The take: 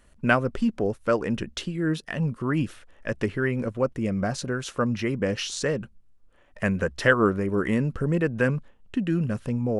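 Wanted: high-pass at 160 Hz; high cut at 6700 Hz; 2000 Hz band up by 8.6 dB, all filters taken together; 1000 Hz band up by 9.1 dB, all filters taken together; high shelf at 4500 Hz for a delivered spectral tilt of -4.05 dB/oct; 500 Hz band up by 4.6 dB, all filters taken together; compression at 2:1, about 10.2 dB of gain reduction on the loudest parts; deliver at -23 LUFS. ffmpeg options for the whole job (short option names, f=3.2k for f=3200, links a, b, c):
-af "highpass=160,lowpass=6.7k,equalizer=f=500:t=o:g=3,equalizer=f=1k:t=o:g=9,equalizer=f=2k:t=o:g=8,highshelf=f=4.5k:g=-3.5,acompressor=threshold=-26dB:ratio=2,volume=5dB"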